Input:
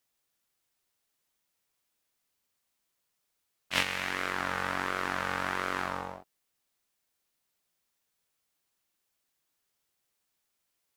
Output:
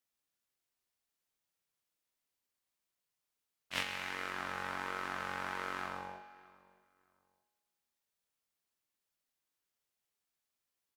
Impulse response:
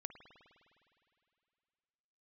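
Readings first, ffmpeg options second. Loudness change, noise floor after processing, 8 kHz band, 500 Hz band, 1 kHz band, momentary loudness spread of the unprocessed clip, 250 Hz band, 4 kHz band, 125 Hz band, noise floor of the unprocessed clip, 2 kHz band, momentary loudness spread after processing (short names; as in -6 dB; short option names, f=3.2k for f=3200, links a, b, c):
-7.5 dB, under -85 dBFS, -8.5 dB, -8.5 dB, -7.0 dB, 7 LU, -9.0 dB, -7.5 dB, -9.5 dB, -80 dBFS, -7.5 dB, 8 LU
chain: -filter_complex "[0:a]asplit=2[a][b];[b]adelay=622,lowpass=f=2k:p=1,volume=-21dB,asplit=2[c][d];[d]adelay=622,lowpass=f=2k:p=1,volume=0.26[e];[a][c][e]amix=inputs=3:normalize=0[f];[1:a]atrim=start_sample=2205,asetrate=74970,aresample=44100[g];[f][g]afir=irnorm=-1:irlink=0,volume=1dB"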